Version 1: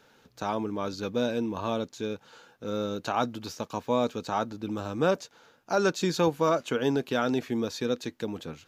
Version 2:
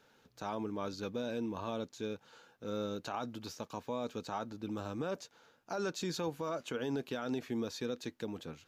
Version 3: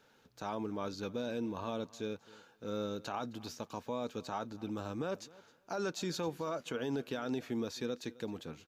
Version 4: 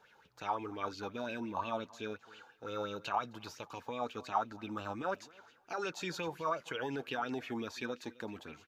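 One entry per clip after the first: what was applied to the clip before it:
brickwall limiter −20.5 dBFS, peak gain reduction 8.5 dB; level −6.5 dB
repeating echo 263 ms, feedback 16%, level −21.5 dB
flanger 0.31 Hz, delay 1.8 ms, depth 1.6 ms, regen −62%; auto-filter bell 5.7 Hz 780–2,900 Hz +17 dB

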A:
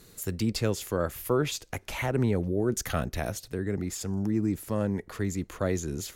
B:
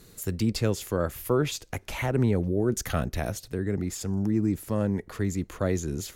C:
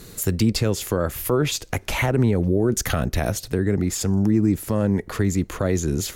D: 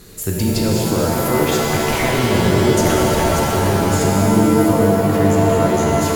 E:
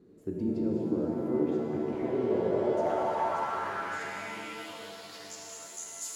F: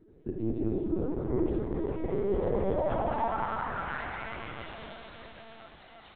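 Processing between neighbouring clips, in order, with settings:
low-shelf EQ 360 Hz +3 dB
in parallel at 0 dB: downward compressor, threshold −32 dBFS, peak gain reduction 12.5 dB; on the sum: brickwall limiter −14.5 dBFS, peak gain reduction 5 dB; level +4.5 dB
reverb with rising layers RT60 3.7 s, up +7 semitones, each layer −2 dB, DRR −3 dB; level −1 dB
band-pass filter sweep 300 Hz → 7,600 Hz, 0:01.93–0:05.80; level −6.5 dB
spectral magnitudes quantised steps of 15 dB; linear-prediction vocoder at 8 kHz pitch kept; echo with shifted repeats 397 ms, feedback 62%, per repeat +64 Hz, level −16 dB

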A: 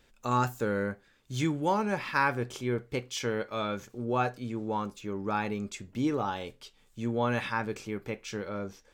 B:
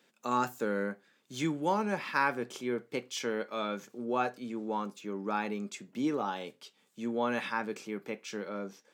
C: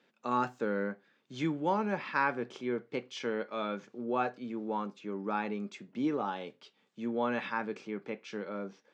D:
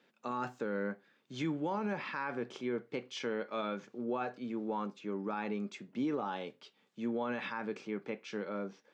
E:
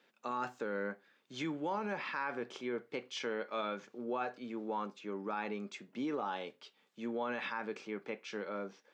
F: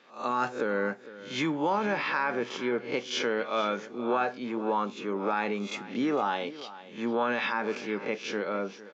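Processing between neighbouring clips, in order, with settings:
Butterworth high-pass 160 Hz 36 dB per octave; level −2 dB
high-frequency loss of the air 160 metres
brickwall limiter −26.5 dBFS, peak gain reduction 10 dB
low-shelf EQ 240 Hz −11 dB; level +1 dB
peak hold with a rise ahead of every peak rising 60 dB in 0.36 s; downsampling to 16,000 Hz; single-tap delay 456 ms −16.5 dB; level +8.5 dB

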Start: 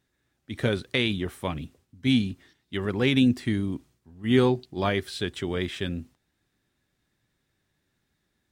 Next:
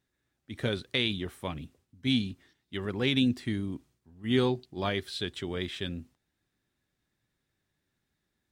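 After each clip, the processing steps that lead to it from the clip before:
dynamic equaliser 3,800 Hz, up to +6 dB, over −43 dBFS, Q 1.8
level −5.5 dB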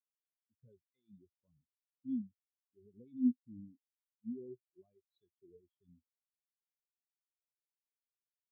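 brickwall limiter −23.5 dBFS, peak gain reduction 10 dB
every bin expanded away from the loudest bin 4 to 1
level +2 dB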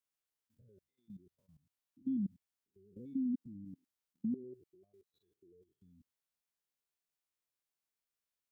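spectrum averaged block by block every 100 ms
output level in coarse steps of 15 dB
level +11.5 dB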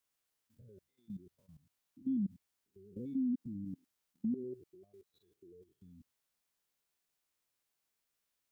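brickwall limiter −35.5 dBFS, peak gain reduction 7 dB
level +6.5 dB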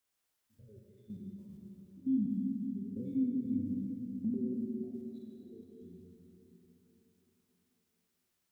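dense smooth reverb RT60 4.1 s, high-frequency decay 0.75×, DRR −1.5 dB

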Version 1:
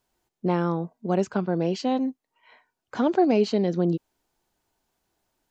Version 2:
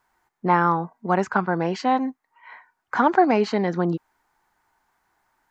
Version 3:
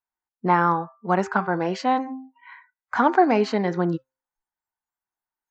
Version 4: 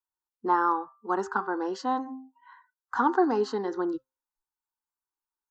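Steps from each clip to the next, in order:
flat-topped bell 1,300 Hz +13 dB
hum removal 131.1 Hz, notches 20; noise reduction from a noise print of the clip's start 26 dB
phaser with its sweep stopped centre 620 Hz, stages 6; level −3 dB

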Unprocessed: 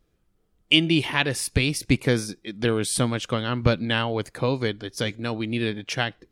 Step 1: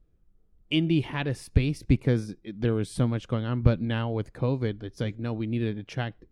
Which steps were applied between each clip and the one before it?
spectral tilt −3 dB per octave
level −8 dB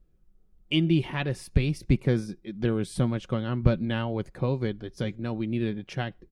comb filter 5.4 ms, depth 35%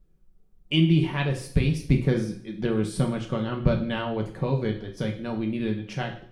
coupled-rooms reverb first 0.5 s, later 1.6 s, from −26 dB, DRR 1.5 dB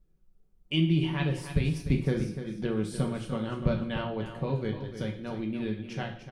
repeating echo 297 ms, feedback 18%, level −10 dB
level −5 dB

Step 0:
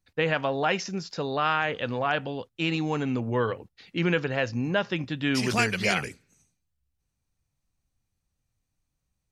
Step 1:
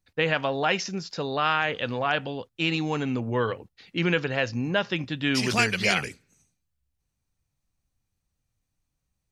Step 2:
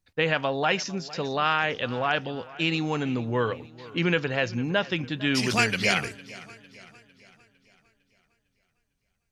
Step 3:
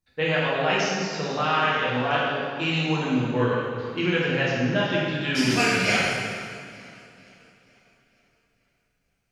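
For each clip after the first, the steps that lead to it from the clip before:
dynamic equaliser 3,800 Hz, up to +4 dB, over −41 dBFS, Q 0.7
feedback echo with a swinging delay time 454 ms, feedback 48%, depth 61 cents, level −19.5 dB
dense smooth reverb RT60 1.9 s, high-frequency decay 0.8×, DRR −7.5 dB; level −5.5 dB

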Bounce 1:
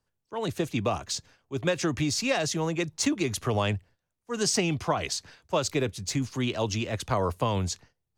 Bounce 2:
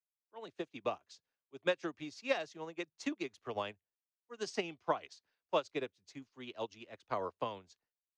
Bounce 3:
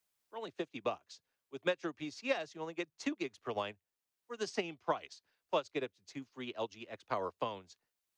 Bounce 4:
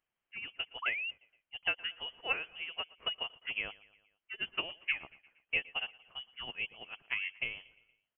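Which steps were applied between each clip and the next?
three-way crossover with the lows and the highs turned down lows −15 dB, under 250 Hz, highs −19 dB, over 5,800 Hz; expander for the loud parts 2.5 to 1, over −40 dBFS; level −3.5 dB
multiband upward and downward compressor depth 40%; level +1 dB
repeating echo 117 ms, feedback 55%, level −22 dB; sound drawn into the spectrogram fall, 0:00.82–0:01.11, 350–2,300 Hz −37 dBFS; voice inversion scrambler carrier 3,200 Hz

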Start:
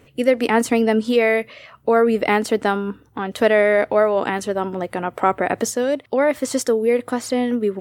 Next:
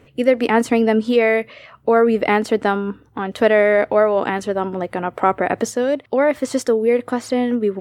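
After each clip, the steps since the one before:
high-shelf EQ 5,500 Hz −9 dB
level +1.5 dB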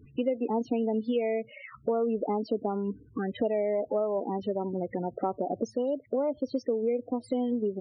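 phaser swept by the level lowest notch 590 Hz, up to 1,700 Hz, full sweep at −15.5 dBFS
spectral peaks only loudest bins 16
downward compressor 3 to 1, threshold −29 dBFS, peak gain reduction 13.5 dB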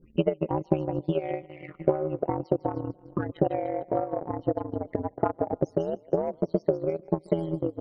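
echo with a time of its own for lows and highs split 430 Hz, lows 711 ms, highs 151 ms, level −13 dB
ring modulation 81 Hz
transient designer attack +10 dB, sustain −10 dB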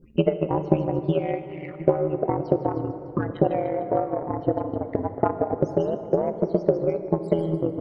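dense smooth reverb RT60 3.4 s, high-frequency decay 0.5×, DRR 9.5 dB
level +3.5 dB

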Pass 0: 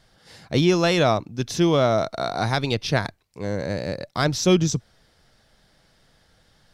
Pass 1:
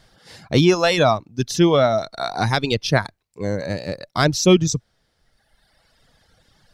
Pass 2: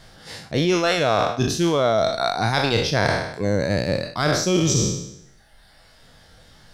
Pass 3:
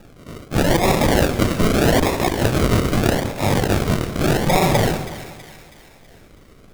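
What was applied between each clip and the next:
reverb reduction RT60 1.6 s; level +4.5 dB
peak hold with a decay on every bin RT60 0.78 s; reversed playback; downward compressor 10 to 1, threshold −21 dBFS, peak gain reduction 14 dB; reversed playback; level +5 dB
samples in bit-reversed order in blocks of 128 samples; sample-and-hold swept by an LFO 41×, swing 60% 0.81 Hz; echo with a time of its own for lows and highs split 1,300 Hz, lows 187 ms, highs 324 ms, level −13 dB; level +3 dB

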